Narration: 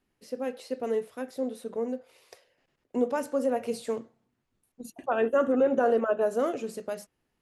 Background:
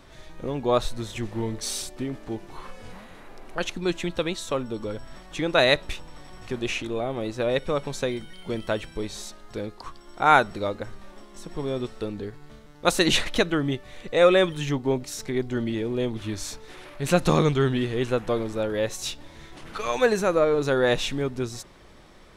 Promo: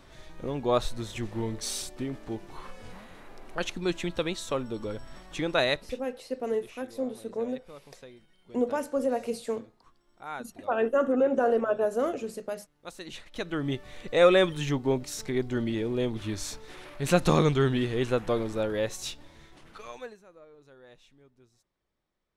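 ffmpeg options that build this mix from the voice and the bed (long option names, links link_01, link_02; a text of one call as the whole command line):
ffmpeg -i stem1.wav -i stem2.wav -filter_complex "[0:a]adelay=5600,volume=-0.5dB[link_01];[1:a]volume=16.5dB,afade=type=out:start_time=5.4:duration=0.68:silence=0.11885,afade=type=in:start_time=13.3:duration=0.5:silence=0.105925,afade=type=out:start_time=18.61:duration=1.57:silence=0.0316228[link_02];[link_01][link_02]amix=inputs=2:normalize=0" out.wav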